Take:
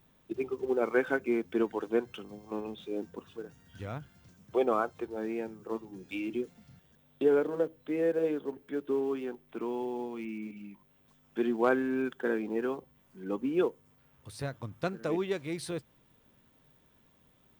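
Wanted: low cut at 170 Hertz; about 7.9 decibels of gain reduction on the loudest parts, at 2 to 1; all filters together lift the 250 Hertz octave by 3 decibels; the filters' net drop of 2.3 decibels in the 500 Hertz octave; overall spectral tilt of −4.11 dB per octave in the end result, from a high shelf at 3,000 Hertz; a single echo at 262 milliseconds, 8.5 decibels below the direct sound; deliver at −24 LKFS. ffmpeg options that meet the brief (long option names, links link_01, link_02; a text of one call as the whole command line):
ffmpeg -i in.wav -af "highpass=170,equalizer=frequency=250:width_type=o:gain=7,equalizer=frequency=500:width_type=o:gain=-5.5,highshelf=frequency=3000:gain=-8,acompressor=threshold=-37dB:ratio=2,aecho=1:1:262:0.376,volume=14.5dB" out.wav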